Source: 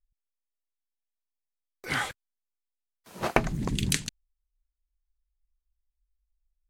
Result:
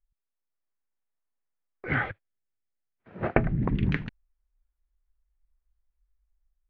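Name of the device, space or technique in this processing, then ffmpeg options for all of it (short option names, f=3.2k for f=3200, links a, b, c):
action camera in a waterproof case: -filter_complex "[0:a]asettb=1/sr,asplit=3[a][b][c];[a]atrim=end=1.864[d];[b]atrim=start=1.86:end=3.65,asetpts=PTS-STARTPTS,afade=t=in:d=0.004:c=qsin,afade=t=out:st=1.786:d=0.004:c=qsin,equalizer=f=100:t=o:w=0.67:g=7,equalizer=f=1k:t=o:w=0.67:g=-10,equalizer=f=10k:t=o:w=0.67:g=-4[e];[c]atrim=start=3.646[f];[d][e]acrossfade=d=0.004:c1=hsin:c2=qsin[g];[g][f]acrossfade=d=0.004:c1=qsin:c2=hsin,lowpass=f=2k:w=0.5412,lowpass=f=2k:w=1.3066,dynaudnorm=f=190:g=5:m=5.5dB" -ar 16000 -c:a aac -b:a 64k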